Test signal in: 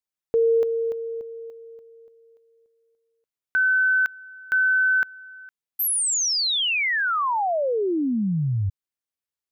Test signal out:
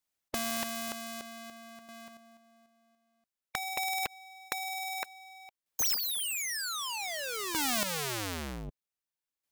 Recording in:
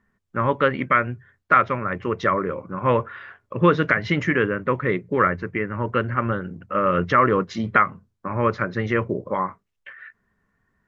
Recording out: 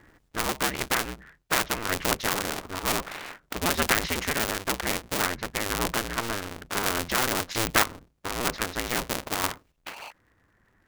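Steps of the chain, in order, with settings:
sub-harmonics by changed cycles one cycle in 2, inverted
square-wave tremolo 0.53 Hz, depth 60%, duty 15%
in parallel at −5 dB: dead-zone distortion −42.5 dBFS
on the sum: every bin compressed towards the loudest bin 2 to 1
level −2 dB

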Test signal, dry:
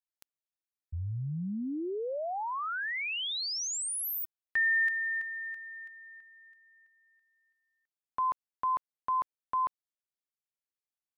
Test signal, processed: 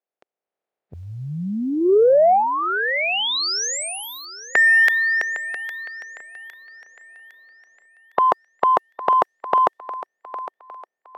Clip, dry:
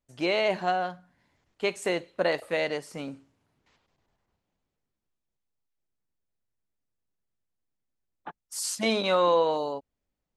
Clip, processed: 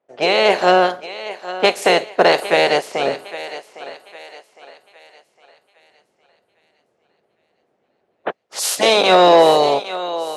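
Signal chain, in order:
ceiling on every frequency bin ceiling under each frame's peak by 19 dB
in parallel at 0 dB: brickwall limiter −16.5 dBFS
on the sum: low-pass that shuts in the quiet parts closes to 1,900 Hz, open at −22.5 dBFS
automatic gain control gain up to 6.5 dB
flat-topped bell 540 Hz +9.5 dB 1.3 octaves
on a send: feedback echo with a high-pass in the loop 808 ms, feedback 41%, high-pass 380 Hz, level −14.5 dB
on the sum: soft clipping −4 dBFS
floating-point word with a short mantissa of 8 bits
high-pass filter 200 Hz 12 dB per octave
level +1 dB

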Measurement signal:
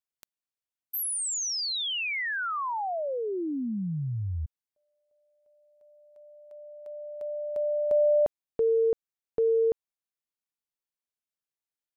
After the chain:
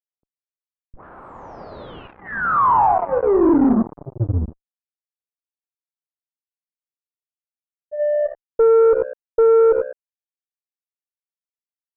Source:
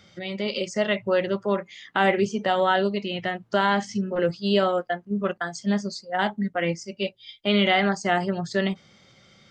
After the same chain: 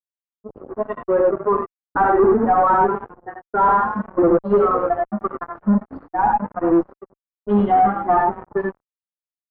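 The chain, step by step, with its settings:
spectral dynamics exaggerated over time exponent 3
phaser with its sweep stopped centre 610 Hz, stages 6
reverb whose tail is shaped and stops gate 120 ms rising, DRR 1 dB
dynamic equaliser 500 Hz, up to −3 dB, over −38 dBFS, Q 1.6
mains-hum notches 60/120/180/240/300/360 Hz
on a send: echo with shifted repeats 208 ms, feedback 35%, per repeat +64 Hz, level −17.5 dB
on the sum: noise reduction from a noise print of the clip's start 20 dB
low-shelf EQ 95 Hz −8.5 dB
in parallel at −10.5 dB: bit reduction 4 bits
on the sum: fuzz pedal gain 37 dB, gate −45 dBFS
low-pass that shuts in the quiet parts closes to 350 Hz, open at −16.5 dBFS
low-pass filter 1,200 Hz 24 dB per octave
level +2.5 dB

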